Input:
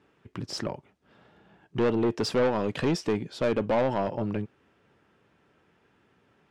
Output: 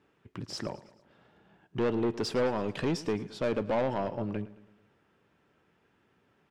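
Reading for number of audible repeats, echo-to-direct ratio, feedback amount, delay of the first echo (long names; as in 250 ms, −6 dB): 3, −16.5 dB, 52%, 109 ms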